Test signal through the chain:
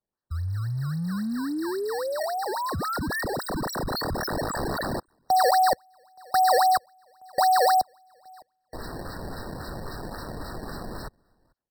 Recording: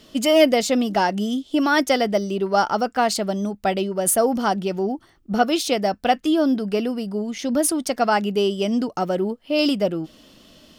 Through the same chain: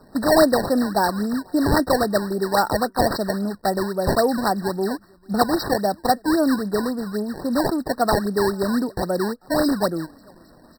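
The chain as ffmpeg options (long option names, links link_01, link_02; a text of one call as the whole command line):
ffmpeg -i in.wav -filter_complex "[0:a]acrossover=split=100|480|5400[link_01][link_02][link_03][link_04];[link_02]acrusher=bits=6:mode=log:mix=0:aa=0.000001[link_05];[link_01][link_05][link_03][link_04]amix=inputs=4:normalize=0,asplit=2[link_06][link_07];[link_07]adelay=443.1,volume=-29dB,highshelf=frequency=4000:gain=-9.97[link_08];[link_06][link_08]amix=inputs=2:normalize=0,acrusher=samples=20:mix=1:aa=0.000001:lfo=1:lforange=32:lforate=3.7,afftfilt=real='re*eq(mod(floor(b*sr/1024/1900),2),0)':imag='im*eq(mod(floor(b*sr/1024/1900),2),0)':win_size=1024:overlap=0.75" out.wav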